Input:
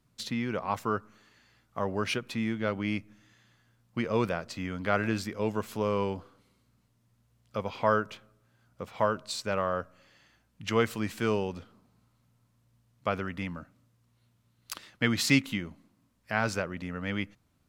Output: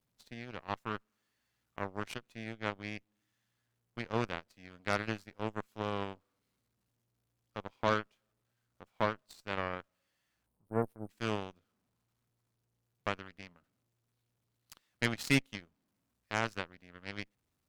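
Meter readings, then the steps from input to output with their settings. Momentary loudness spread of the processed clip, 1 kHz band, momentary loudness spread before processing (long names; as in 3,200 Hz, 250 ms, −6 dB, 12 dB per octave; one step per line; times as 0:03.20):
16 LU, −6.0 dB, 14 LU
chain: converter with a step at zero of −35.5 dBFS
time-frequency box erased 0:10.47–0:11.09, 1,000–8,500 Hz
harmonic generator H 4 −24 dB, 7 −17 dB, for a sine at −9.5 dBFS
level −5 dB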